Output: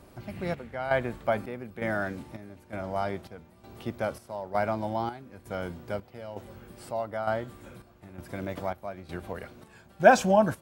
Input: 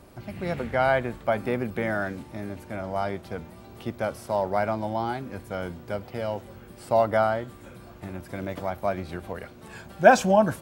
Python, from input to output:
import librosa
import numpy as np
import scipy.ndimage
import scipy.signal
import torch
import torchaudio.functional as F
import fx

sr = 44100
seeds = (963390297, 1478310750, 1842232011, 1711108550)

y = fx.chopper(x, sr, hz=1.1, depth_pct=65, duty_pct=60)
y = y * 10.0 ** (-2.0 / 20.0)